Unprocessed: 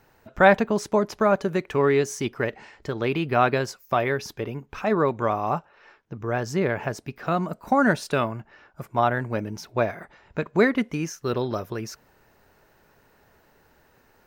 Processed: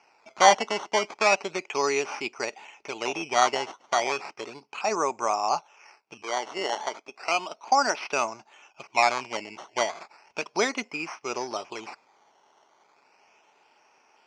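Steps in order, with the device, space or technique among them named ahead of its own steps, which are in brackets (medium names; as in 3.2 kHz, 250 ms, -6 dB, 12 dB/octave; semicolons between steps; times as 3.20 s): 6.22–8.01 s: high-pass 290 Hz 12 dB/octave; circuit-bent sampling toy (decimation with a swept rate 12×, swing 100% 0.34 Hz; cabinet simulation 500–6000 Hz, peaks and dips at 510 Hz -6 dB, 840 Hz +5 dB, 1.7 kHz -9 dB, 2.5 kHz +10 dB, 3.8 kHz -9 dB, 5.7 kHz +7 dB)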